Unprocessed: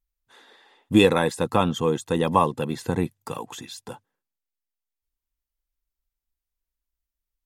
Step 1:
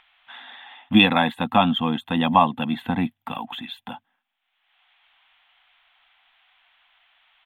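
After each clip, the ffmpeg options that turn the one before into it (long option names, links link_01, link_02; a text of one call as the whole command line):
ffmpeg -i in.wav -filter_complex "[0:a]firequalizer=gain_entry='entry(130,0);entry(240,14);entry(400,-12);entry(720,14);entry(1000,7);entry(3400,14);entry(5100,-25);entry(14000,2)':delay=0.05:min_phase=1,acrossover=split=700|4200[link_01][link_02][link_03];[link_02]acompressor=mode=upward:threshold=-29dB:ratio=2.5[link_04];[link_01][link_04][link_03]amix=inputs=3:normalize=0,volume=-5dB" out.wav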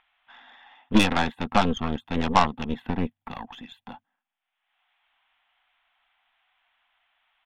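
ffmpeg -i in.wav -af "highshelf=frequency=3400:gain=-12,aeval=exprs='0.75*(cos(1*acos(clip(val(0)/0.75,-1,1)))-cos(1*PI/2))+0.119*(cos(3*acos(clip(val(0)/0.75,-1,1)))-cos(3*PI/2))+0.075*(cos(8*acos(clip(val(0)/0.75,-1,1)))-cos(8*PI/2))':channel_layout=same" out.wav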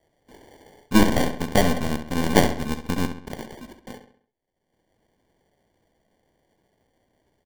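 ffmpeg -i in.wav -filter_complex "[0:a]acrusher=samples=34:mix=1:aa=0.000001,asplit=2[link_01][link_02];[link_02]adelay=67,lowpass=frequency=5000:poles=1,volume=-9dB,asplit=2[link_03][link_04];[link_04]adelay=67,lowpass=frequency=5000:poles=1,volume=0.45,asplit=2[link_05][link_06];[link_06]adelay=67,lowpass=frequency=5000:poles=1,volume=0.45,asplit=2[link_07][link_08];[link_08]adelay=67,lowpass=frequency=5000:poles=1,volume=0.45,asplit=2[link_09][link_10];[link_10]adelay=67,lowpass=frequency=5000:poles=1,volume=0.45[link_11];[link_01][link_03][link_05][link_07][link_09][link_11]amix=inputs=6:normalize=0,volume=1.5dB" out.wav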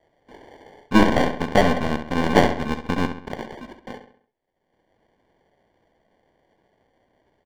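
ffmpeg -i in.wav -filter_complex "[0:a]asplit=2[link_01][link_02];[link_02]highpass=frequency=720:poles=1,volume=5dB,asoftclip=type=tanh:threshold=-1dB[link_03];[link_01][link_03]amix=inputs=2:normalize=0,lowpass=frequency=1700:poles=1,volume=-6dB,acrossover=split=6000[link_04][link_05];[link_04]acontrast=39[link_06];[link_06][link_05]amix=inputs=2:normalize=0" out.wav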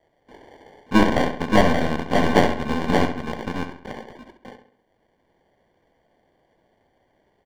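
ffmpeg -i in.wav -af "aecho=1:1:578:0.631,volume=-1dB" out.wav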